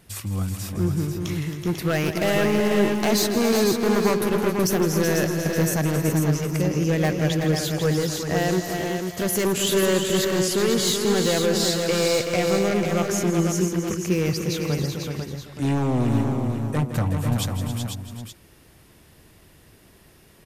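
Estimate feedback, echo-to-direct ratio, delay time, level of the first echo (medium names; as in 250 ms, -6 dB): no regular repeats, -1.5 dB, 163 ms, -12.0 dB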